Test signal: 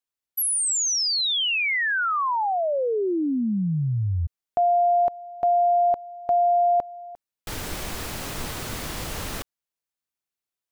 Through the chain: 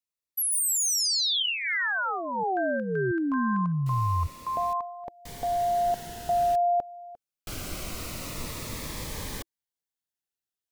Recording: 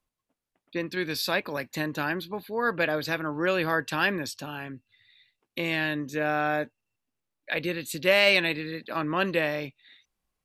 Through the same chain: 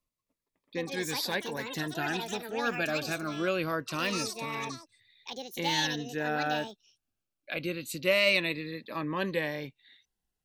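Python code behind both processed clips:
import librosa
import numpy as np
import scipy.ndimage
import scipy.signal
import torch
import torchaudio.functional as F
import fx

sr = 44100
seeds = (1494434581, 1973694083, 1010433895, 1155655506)

y = fx.echo_pitch(x, sr, ms=267, semitones=7, count=2, db_per_echo=-6.0)
y = fx.notch_cascade(y, sr, direction='falling', hz=0.24)
y = F.gain(torch.from_numpy(y), -3.0).numpy()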